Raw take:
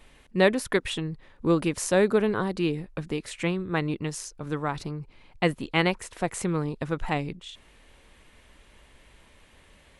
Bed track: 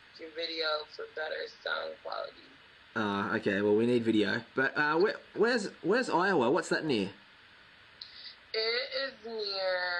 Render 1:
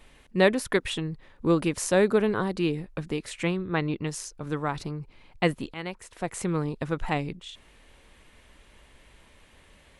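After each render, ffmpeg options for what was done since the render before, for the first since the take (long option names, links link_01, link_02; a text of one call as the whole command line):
ffmpeg -i in.wav -filter_complex "[0:a]asettb=1/sr,asplit=3[link_01][link_02][link_03];[link_01]atrim=end=3.574[link_04];[link_02]atrim=start=3.57:end=4.07,asetpts=PTS-STARTPTS,afade=type=in:duration=0.004:curve=qsin,afade=type=out:start_time=0.496:duration=0.004:curve=qsin,lowpass=frequency=5500:width=0.5412,lowpass=frequency=5500:width=1.3066[link_05];[link_03]atrim=start=4.066[link_06];[link_04][link_05]acrossfade=duration=0.004:curve1=hsin:curve2=qsin[link_07];[link_07][link_06]acrossfade=duration=0.004:curve1=qsin:curve2=hsin,asplit=2[link_08][link_09];[link_08]atrim=end=5.74,asetpts=PTS-STARTPTS,afade=type=out:start_time=5.736:duration=0.004:curve=hsin:silence=0.149624[link_10];[link_09]atrim=start=5.74,asetpts=PTS-STARTPTS,afade=type=in:duration=0.82:silence=0.149624[link_11];[link_10][link_11]concat=n=2:v=0:a=1" out.wav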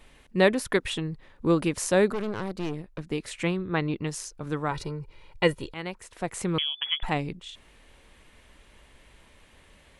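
ffmpeg -i in.wav -filter_complex "[0:a]asettb=1/sr,asplit=3[link_01][link_02][link_03];[link_01]atrim=end=2.124[link_04];[link_02]atrim=start=2.12:end=3.12,asetpts=PTS-STARTPTS,afade=type=in:duration=0.004:curve=qsin,afade=type=out:start_time=0.996:duration=0.004:curve=qsin,aeval=exprs='(tanh(22.4*val(0)+0.8)-tanh(0.8))/22.4':channel_layout=same[link_05];[link_03]atrim=start=3.116[link_06];[link_04][link_05]acrossfade=duration=0.004:curve1=hsin:curve2=qsin[link_07];[link_07][link_06]acrossfade=duration=0.004:curve1=qsin:curve2=hsin,asettb=1/sr,asplit=3[link_08][link_09][link_10];[link_08]atrim=end=4.714[link_11];[link_09]atrim=start=4.71:end=5.74,asetpts=PTS-STARTPTS,afade=type=in:duration=0.004:curve=qsin,afade=type=out:start_time=1.026:duration=0.004:curve=qsin,aecho=1:1:2.1:0.65,atrim=end_sample=45423[link_12];[link_10]atrim=start=5.736[link_13];[link_11][link_12]acrossfade=duration=0.004:curve1=hsin:curve2=qsin[link_14];[link_14][link_13]acrossfade=duration=0.004:curve1=qsin:curve2=hsin,asettb=1/sr,asplit=3[link_15][link_16][link_17];[link_15]atrim=end=6.584[link_18];[link_16]atrim=start=6.58:end=7.03,asetpts=PTS-STARTPTS,afade=type=in:duration=0.004:curve=qsin,afade=type=out:start_time=0.446:duration=0.004:curve=qsin,lowpass=frequency=3000:width_type=q:width=0.5098,lowpass=frequency=3000:width_type=q:width=0.6013,lowpass=frequency=3000:width_type=q:width=0.9,lowpass=frequency=3000:width_type=q:width=2.563,afreqshift=-3500[link_19];[link_17]atrim=start=7.026[link_20];[link_18][link_19]acrossfade=duration=0.004:curve1=hsin:curve2=qsin[link_21];[link_21][link_20]acrossfade=duration=0.004:curve1=qsin:curve2=hsin" out.wav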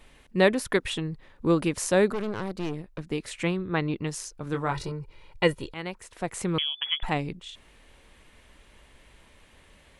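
ffmpeg -i in.wav -filter_complex "[0:a]asettb=1/sr,asplit=3[link_01][link_02][link_03];[link_01]atrim=end=4.524[link_04];[link_02]atrim=start=4.52:end=4.92,asetpts=PTS-STARTPTS,afade=type=in:duration=0.004:curve=qsin,afade=type=out:start_time=0.396:duration=0.004:curve=qsin,asplit=2[link_05][link_06];[link_06]adelay=22,volume=-6dB[link_07];[link_05][link_07]amix=inputs=2:normalize=0,atrim=end_sample=17640[link_08];[link_03]atrim=start=4.916[link_09];[link_04][link_08]acrossfade=duration=0.004:curve1=hsin:curve2=qsin[link_10];[link_10][link_09]acrossfade=duration=0.004:curve1=qsin:curve2=hsin" out.wav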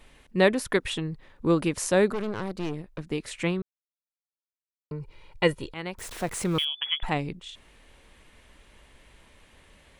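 ffmpeg -i in.wav -filter_complex "[0:a]asettb=1/sr,asplit=3[link_01][link_02][link_03];[link_01]atrim=end=5.984[link_04];[link_02]atrim=start=5.98:end=6.65,asetpts=PTS-STARTPTS,afade=type=in:duration=0.004:curve=qsin,afade=type=out:start_time=0.666:duration=0.004:curve=qsin,aeval=exprs='val(0)+0.5*0.015*sgn(val(0))':channel_layout=same[link_05];[link_03]atrim=start=6.646[link_06];[link_04][link_05]acrossfade=duration=0.004:curve1=hsin:curve2=qsin[link_07];[link_07][link_06]acrossfade=duration=0.004:curve1=qsin:curve2=hsin,asplit=3[link_08][link_09][link_10];[link_08]atrim=end=3.62,asetpts=PTS-STARTPTS,afade=type=out:start_time=3.616:duration=0.004:curve=hsin[link_11];[link_09]atrim=start=3.62:end=4.91,asetpts=PTS-STARTPTS,volume=0[link_12];[link_10]atrim=start=4.91,asetpts=PTS-STARTPTS,afade=type=in:duration=0.004:curve=hsin[link_13];[link_11][link_12][link_13]concat=n=3:v=0:a=1" out.wav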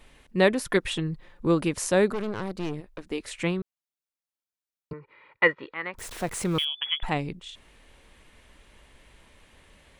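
ffmpeg -i in.wav -filter_complex "[0:a]asettb=1/sr,asplit=3[link_01][link_02][link_03];[link_01]atrim=end=0.664[link_04];[link_02]atrim=start=0.66:end=1.47,asetpts=PTS-STARTPTS,afade=type=in:duration=0.004:curve=qsin,afade=type=out:start_time=0.806:duration=0.004:curve=qsin,aecho=1:1:5.7:0.41,atrim=end_sample=35721[link_05];[link_03]atrim=start=1.466[link_06];[link_04][link_05]acrossfade=duration=0.004:curve1=hsin:curve2=qsin[link_07];[link_07][link_06]acrossfade=duration=0.004:curve1=qsin:curve2=hsin,asettb=1/sr,asplit=3[link_08][link_09][link_10];[link_08]atrim=end=2.804[link_11];[link_09]atrim=start=2.8:end=3.39,asetpts=PTS-STARTPTS,afade=type=in:duration=0.004:curve=qsin,afade=type=out:start_time=0.586:duration=0.004:curve=qsin,equalizer=frequency=150:width=2.4:gain=-14.5[link_12];[link_10]atrim=start=3.386[link_13];[link_11][link_12]acrossfade=duration=0.004:curve1=hsin:curve2=qsin[link_14];[link_14][link_13]acrossfade=duration=0.004:curve1=qsin:curve2=hsin,asettb=1/sr,asplit=3[link_15][link_16][link_17];[link_15]atrim=end=4.934[link_18];[link_16]atrim=start=4.93:end=5.94,asetpts=PTS-STARTPTS,afade=type=in:duration=0.004:curve=qsin,afade=type=out:start_time=1.006:duration=0.004:curve=qsin,highpass=300,equalizer=frequency=370:width_type=q:width=4:gain=-3,equalizer=frequency=720:width_type=q:width=4:gain=-3,equalizer=frequency=1200:width_type=q:width=4:gain=9,equalizer=frequency=1900:width_type=q:width=4:gain=10,equalizer=frequency=3000:width_type=q:width=4:gain=-5,lowpass=frequency=3200:width=0.5412,lowpass=frequency=3200:width=1.3066[link_19];[link_17]atrim=start=5.936[link_20];[link_18][link_19]acrossfade=duration=0.004:curve1=hsin:curve2=qsin[link_21];[link_21][link_20]acrossfade=duration=0.004:curve1=qsin:curve2=hsin" out.wav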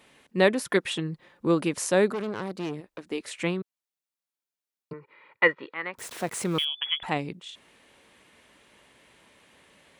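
ffmpeg -i in.wav -af "highpass=160" out.wav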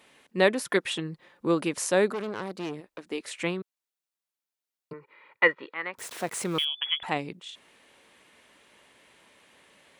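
ffmpeg -i in.wav -af "lowshelf=frequency=190:gain=-7.5" out.wav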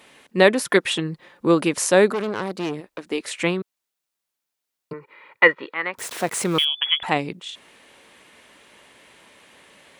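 ffmpeg -i in.wav -af "volume=7.5dB,alimiter=limit=-1dB:level=0:latency=1" out.wav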